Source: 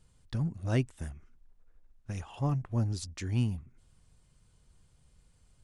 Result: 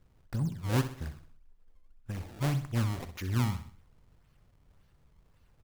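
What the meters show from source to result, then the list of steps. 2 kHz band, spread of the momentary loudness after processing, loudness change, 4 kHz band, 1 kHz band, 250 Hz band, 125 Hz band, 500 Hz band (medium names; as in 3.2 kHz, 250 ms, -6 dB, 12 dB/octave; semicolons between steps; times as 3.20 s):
+4.0 dB, 13 LU, +0.5 dB, +3.0 dB, +3.5 dB, 0.0 dB, 0.0 dB, -0.5 dB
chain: band-stop 660 Hz; decimation with a swept rate 24×, swing 160% 1.8 Hz; feedback delay 64 ms, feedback 44%, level -11.5 dB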